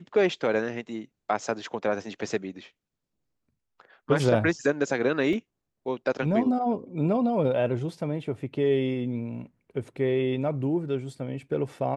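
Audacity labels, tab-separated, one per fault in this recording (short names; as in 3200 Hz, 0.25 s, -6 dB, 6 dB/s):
5.330000	5.330000	gap 2.2 ms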